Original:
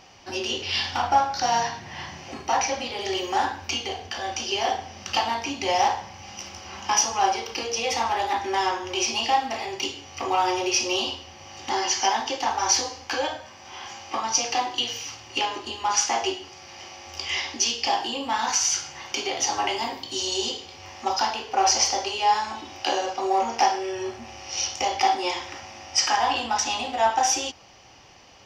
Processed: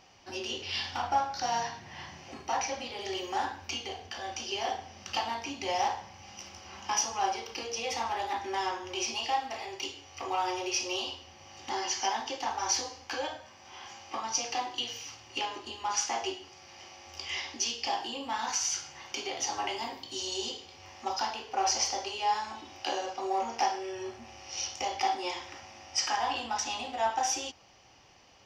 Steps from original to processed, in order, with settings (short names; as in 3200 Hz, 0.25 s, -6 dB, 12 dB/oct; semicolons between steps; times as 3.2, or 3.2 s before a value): 9.14–11.21 bell 190 Hz -12.5 dB 0.58 oct; gain -8 dB